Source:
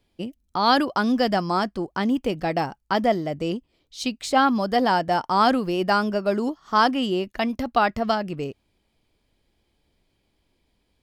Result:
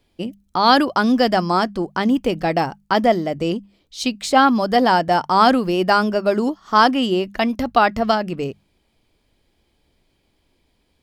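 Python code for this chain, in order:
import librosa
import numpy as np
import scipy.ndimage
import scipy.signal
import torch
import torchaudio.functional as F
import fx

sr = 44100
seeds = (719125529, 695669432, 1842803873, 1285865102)

y = fx.hum_notches(x, sr, base_hz=50, count=4)
y = y * librosa.db_to_amplitude(5.0)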